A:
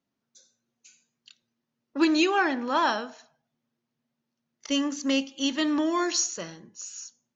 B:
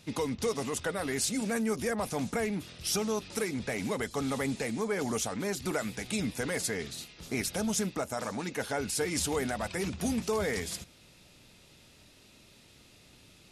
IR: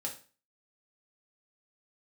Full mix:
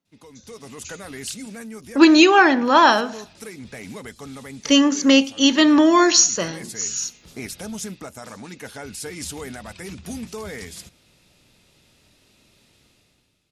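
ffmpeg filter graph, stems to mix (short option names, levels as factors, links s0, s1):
-filter_complex "[0:a]volume=1.06,asplit=2[s0][s1];[1:a]adynamicequalizer=threshold=0.00562:dfrequency=640:dqfactor=0.73:tfrequency=640:tqfactor=0.73:attack=5:release=100:ratio=0.375:range=2.5:mode=cutabove:tftype=bell,adelay=50,volume=0.168[s2];[s1]apad=whole_len=598398[s3];[s2][s3]sidechaincompress=threshold=0.0224:ratio=8:attack=16:release=216[s4];[s0][s4]amix=inputs=2:normalize=0,dynaudnorm=f=140:g=9:m=5.62"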